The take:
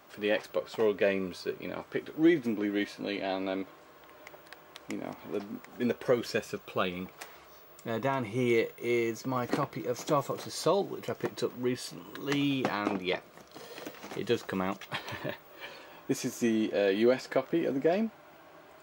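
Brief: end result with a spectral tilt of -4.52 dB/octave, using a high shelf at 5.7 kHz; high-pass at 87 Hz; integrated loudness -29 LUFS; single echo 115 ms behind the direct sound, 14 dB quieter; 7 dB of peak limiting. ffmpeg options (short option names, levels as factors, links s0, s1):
-af "highpass=87,highshelf=f=5700:g=5,alimiter=limit=0.0841:level=0:latency=1,aecho=1:1:115:0.2,volume=1.78"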